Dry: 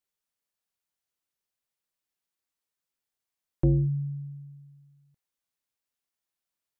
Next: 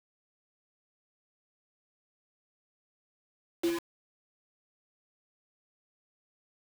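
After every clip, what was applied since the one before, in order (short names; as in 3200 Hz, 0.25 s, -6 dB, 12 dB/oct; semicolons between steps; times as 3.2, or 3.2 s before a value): steep high-pass 300 Hz 36 dB/oct; flange 0.84 Hz, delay 2.8 ms, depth 1.5 ms, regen +37%; requantised 6-bit, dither none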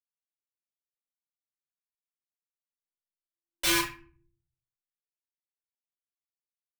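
passive tone stack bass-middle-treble 10-0-10; reverb RT60 0.40 s, pre-delay 3 ms, DRR -9 dB; gain +9 dB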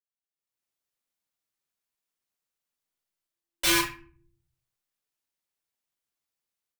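AGC gain up to 16.5 dB; gain -8.5 dB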